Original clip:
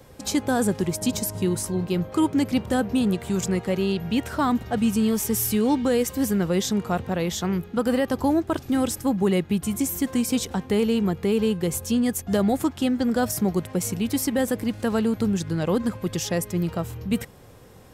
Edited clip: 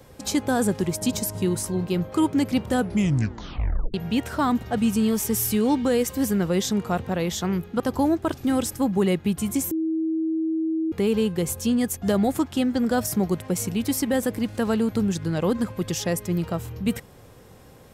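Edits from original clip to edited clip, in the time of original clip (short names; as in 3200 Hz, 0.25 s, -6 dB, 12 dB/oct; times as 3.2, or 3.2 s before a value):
2.76 tape stop 1.18 s
7.8–8.05 cut
9.96–11.17 bleep 321 Hz -21.5 dBFS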